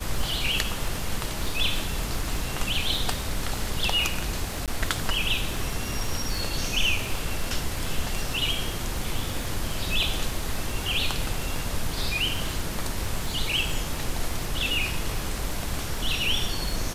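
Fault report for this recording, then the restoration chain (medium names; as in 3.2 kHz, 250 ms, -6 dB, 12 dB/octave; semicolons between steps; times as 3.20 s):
crackle 44 per s -30 dBFS
4.66–4.68 s: dropout 17 ms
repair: de-click; interpolate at 4.66 s, 17 ms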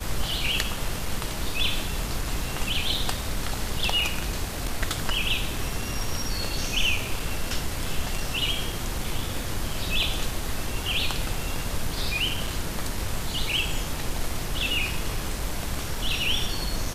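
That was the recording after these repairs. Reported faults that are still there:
nothing left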